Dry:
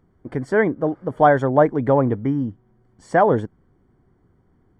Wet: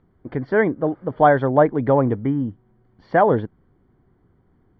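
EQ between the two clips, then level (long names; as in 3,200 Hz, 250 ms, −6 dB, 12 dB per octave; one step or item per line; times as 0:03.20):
Butterworth low-pass 4,400 Hz 48 dB per octave
0.0 dB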